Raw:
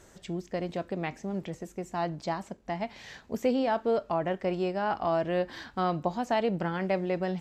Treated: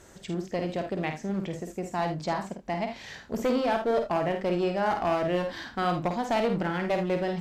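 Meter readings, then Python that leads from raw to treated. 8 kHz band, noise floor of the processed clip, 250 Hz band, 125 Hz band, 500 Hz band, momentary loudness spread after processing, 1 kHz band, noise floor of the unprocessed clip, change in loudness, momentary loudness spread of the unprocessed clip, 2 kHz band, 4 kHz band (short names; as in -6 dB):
n/a, -51 dBFS, +2.0 dB, +2.5 dB, +2.0 dB, 8 LU, +2.0 dB, -57 dBFS, +2.0 dB, 10 LU, +3.5 dB, +3.5 dB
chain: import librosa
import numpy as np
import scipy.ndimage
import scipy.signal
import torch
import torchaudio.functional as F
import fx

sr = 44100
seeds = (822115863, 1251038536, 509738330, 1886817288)

y = fx.clip_asym(x, sr, top_db=-27.5, bottom_db=-20.5)
y = fx.room_early_taps(y, sr, ms=(51, 77), db=(-6.5, -12.5))
y = y * 10.0 ** (2.5 / 20.0)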